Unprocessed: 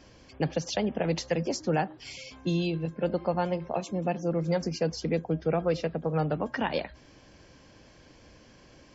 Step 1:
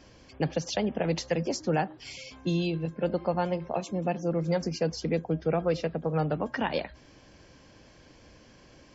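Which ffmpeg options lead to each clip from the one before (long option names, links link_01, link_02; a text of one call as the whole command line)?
ffmpeg -i in.wav -af anull out.wav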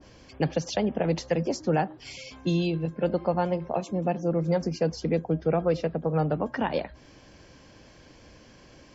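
ffmpeg -i in.wav -af "adynamicequalizer=threshold=0.00562:dfrequency=1500:dqfactor=0.7:tfrequency=1500:tqfactor=0.7:attack=5:release=100:ratio=0.375:range=3:mode=cutabove:tftype=highshelf,volume=2.5dB" out.wav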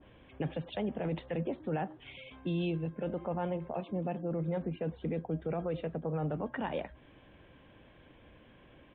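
ffmpeg -i in.wav -af "alimiter=limit=-20.5dB:level=0:latency=1:release=11,aresample=8000,aresample=44100,volume=-5.5dB" out.wav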